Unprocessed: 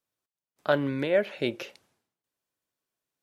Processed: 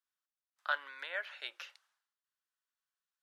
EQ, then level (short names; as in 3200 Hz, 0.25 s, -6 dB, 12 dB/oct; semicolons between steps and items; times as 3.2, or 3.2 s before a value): HPF 1300 Hz 24 dB/oct; tilt -4 dB/oct; bell 2300 Hz -7 dB 0.5 oct; +2.5 dB